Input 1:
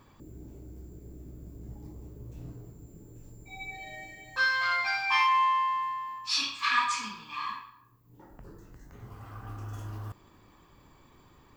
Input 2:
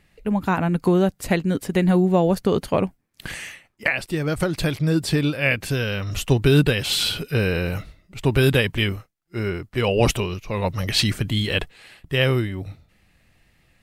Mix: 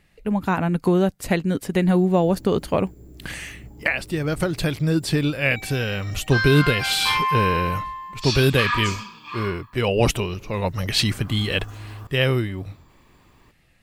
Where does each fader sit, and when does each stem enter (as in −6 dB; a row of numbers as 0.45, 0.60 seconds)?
+2.0, −0.5 decibels; 1.95, 0.00 seconds